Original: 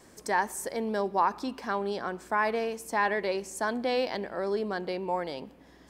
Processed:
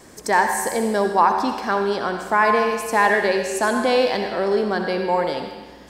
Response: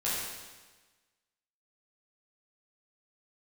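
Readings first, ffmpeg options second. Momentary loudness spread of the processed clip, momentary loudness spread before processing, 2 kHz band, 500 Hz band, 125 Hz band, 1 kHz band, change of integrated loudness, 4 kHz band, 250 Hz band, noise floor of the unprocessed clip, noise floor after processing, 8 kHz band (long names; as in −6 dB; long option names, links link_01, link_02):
5 LU, 6 LU, +11.0 dB, +10.0 dB, can't be measured, +10.5 dB, +10.5 dB, +10.5 dB, +9.5 dB, −56 dBFS, −43 dBFS, +10.5 dB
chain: -filter_complex "[0:a]asplit=2[link_01][link_02];[1:a]atrim=start_sample=2205,lowshelf=frequency=210:gain=-10,adelay=63[link_03];[link_02][link_03]afir=irnorm=-1:irlink=0,volume=-11.5dB[link_04];[link_01][link_04]amix=inputs=2:normalize=0,volume=9dB"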